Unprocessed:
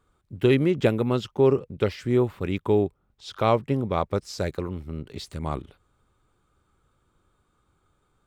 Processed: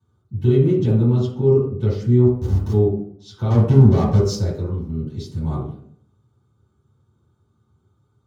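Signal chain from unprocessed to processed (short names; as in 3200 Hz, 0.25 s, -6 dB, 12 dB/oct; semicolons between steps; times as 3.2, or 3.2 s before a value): HPF 130 Hz 12 dB/oct; limiter -13 dBFS, peak gain reduction 7 dB; 2.26–2.72 Schmitt trigger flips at -28 dBFS; 3.5–4.35 sample leveller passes 3; reverb RT60 0.60 s, pre-delay 3 ms, DRR -11 dB; gain -16.5 dB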